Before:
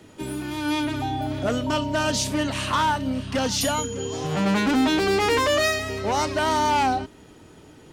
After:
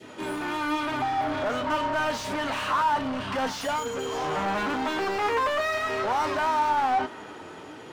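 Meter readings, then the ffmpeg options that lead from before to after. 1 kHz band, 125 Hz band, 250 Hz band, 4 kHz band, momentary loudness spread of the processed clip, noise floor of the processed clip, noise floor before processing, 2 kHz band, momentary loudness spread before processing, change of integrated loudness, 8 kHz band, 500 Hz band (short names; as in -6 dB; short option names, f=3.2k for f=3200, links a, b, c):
0.0 dB, -12.0 dB, -8.0 dB, -7.5 dB, 7 LU, -43 dBFS, -49 dBFS, -2.0 dB, 8 LU, -3.5 dB, -11.5 dB, -4.0 dB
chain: -filter_complex "[0:a]asplit=2[a][b];[b]highpass=f=720:p=1,volume=30dB,asoftclip=type=tanh:threshold=-12dB[c];[a][c]amix=inputs=2:normalize=0,lowpass=f=2k:p=1,volume=-6dB,flanger=delay=7.8:depth=3.6:regen=68:speed=1:shape=sinusoidal,adynamicequalizer=threshold=0.0158:dfrequency=1100:dqfactor=0.81:tfrequency=1100:tqfactor=0.81:attack=5:release=100:ratio=0.375:range=3.5:mode=boostabove:tftype=bell,volume=-7.5dB"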